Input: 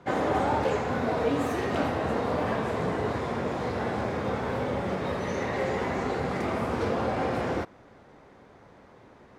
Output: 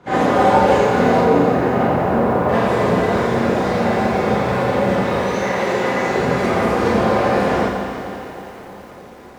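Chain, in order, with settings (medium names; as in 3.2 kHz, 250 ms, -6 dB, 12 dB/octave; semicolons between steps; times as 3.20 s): 1.19–2.49 s: Bessel low-pass 1.4 kHz, order 2; 5.15–6.12 s: bass shelf 240 Hz -9.5 dB; echo whose repeats swap between lows and highs 156 ms, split 1 kHz, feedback 79%, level -9.5 dB; Schroeder reverb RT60 0.4 s, combs from 31 ms, DRR -7.5 dB; bit-crushed delay 86 ms, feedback 80%, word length 8-bit, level -10 dB; trim +2.5 dB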